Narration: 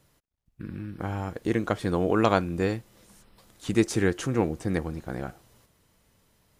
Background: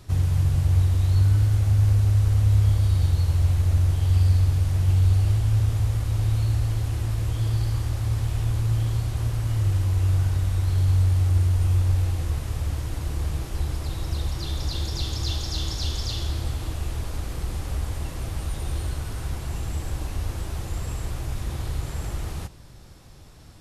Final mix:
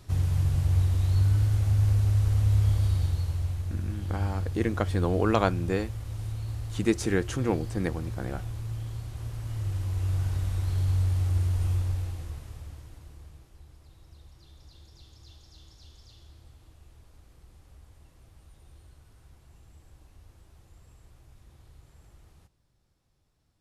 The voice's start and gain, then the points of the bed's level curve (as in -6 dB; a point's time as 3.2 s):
3.10 s, -2.0 dB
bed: 2.86 s -4 dB
3.67 s -11.5 dB
9.08 s -11.5 dB
10.34 s -5.5 dB
11.69 s -5.5 dB
13.6 s -25 dB